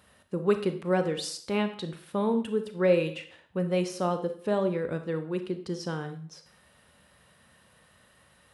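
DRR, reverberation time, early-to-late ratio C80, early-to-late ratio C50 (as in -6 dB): 8.0 dB, 0.55 s, 15.0 dB, 11.0 dB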